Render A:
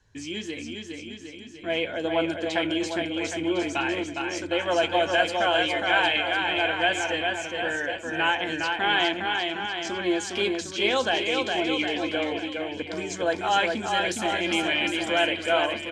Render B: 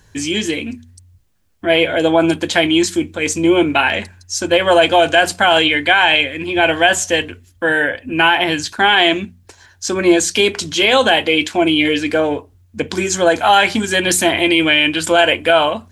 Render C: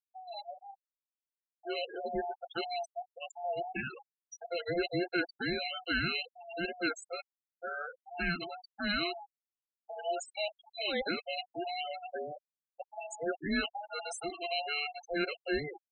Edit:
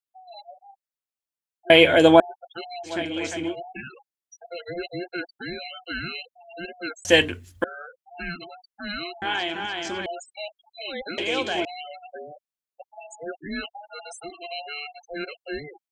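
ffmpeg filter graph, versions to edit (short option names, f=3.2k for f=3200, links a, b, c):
-filter_complex "[1:a]asplit=2[a][b];[0:a]asplit=3[c][d][e];[2:a]asplit=6[f][g][h][i][j][k];[f]atrim=end=1.702[l];[a]atrim=start=1.698:end=2.202[m];[g]atrim=start=2.198:end=2.93[n];[c]atrim=start=2.83:end=3.56[o];[h]atrim=start=3.46:end=7.052[p];[b]atrim=start=7.048:end=7.642[q];[i]atrim=start=7.638:end=9.222[r];[d]atrim=start=9.218:end=10.062[s];[j]atrim=start=10.058:end=11.182[t];[e]atrim=start=11.178:end=11.652[u];[k]atrim=start=11.648[v];[l][m]acrossfade=d=0.004:c1=hsin:c2=hsin[w];[w][n]acrossfade=d=0.004:c1=hsin:c2=hsin[x];[x][o]acrossfade=d=0.1:c1=tri:c2=tri[y];[y][p]acrossfade=d=0.1:c1=tri:c2=tri[z];[z][q]acrossfade=d=0.004:c1=hsin:c2=hsin[aa];[aa][r]acrossfade=d=0.004:c1=hsin:c2=hsin[ab];[ab][s]acrossfade=d=0.004:c1=hsin:c2=hsin[ac];[ac][t]acrossfade=d=0.004:c1=hsin:c2=hsin[ad];[ad][u]acrossfade=d=0.004:c1=hsin:c2=hsin[ae];[ae][v]acrossfade=d=0.004:c1=hsin:c2=hsin"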